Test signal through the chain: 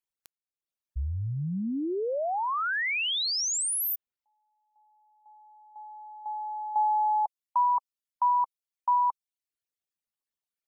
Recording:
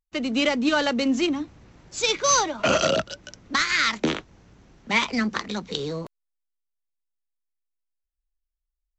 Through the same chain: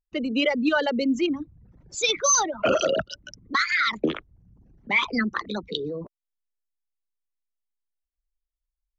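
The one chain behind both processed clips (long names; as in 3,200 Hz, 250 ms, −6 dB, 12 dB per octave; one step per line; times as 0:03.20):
spectral envelope exaggerated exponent 2
reverb reduction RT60 0.56 s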